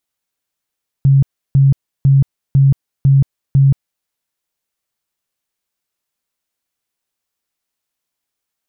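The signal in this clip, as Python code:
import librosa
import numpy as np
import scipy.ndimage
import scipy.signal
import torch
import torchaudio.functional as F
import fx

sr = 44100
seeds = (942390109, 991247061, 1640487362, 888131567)

y = fx.tone_burst(sr, hz=137.0, cycles=24, every_s=0.5, bursts=6, level_db=-6.0)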